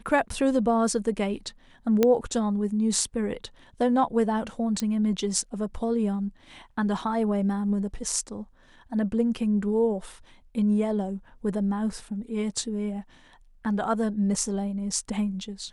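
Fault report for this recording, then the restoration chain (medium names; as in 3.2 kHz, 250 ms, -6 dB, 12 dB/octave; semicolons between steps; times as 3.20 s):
2.03 s: pop -8 dBFS
4.80 s: pop -15 dBFS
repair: de-click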